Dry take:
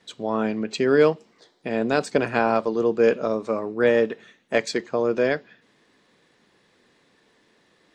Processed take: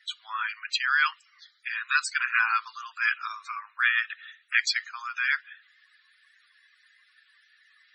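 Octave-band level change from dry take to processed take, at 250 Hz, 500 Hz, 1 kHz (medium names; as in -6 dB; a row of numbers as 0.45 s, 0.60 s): under -40 dB, under -40 dB, -2.5 dB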